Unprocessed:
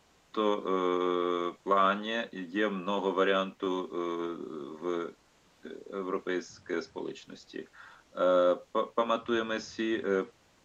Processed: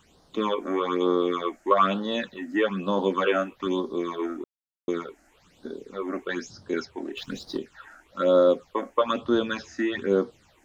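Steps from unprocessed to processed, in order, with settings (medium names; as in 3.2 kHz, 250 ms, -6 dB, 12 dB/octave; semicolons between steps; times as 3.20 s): 7.17–7.58 s: waveshaping leveller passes 2; phase shifter stages 8, 1.1 Hz, lowest notch 130–2500 Hz; 4.44–4.88 s: mute; trim +7 dB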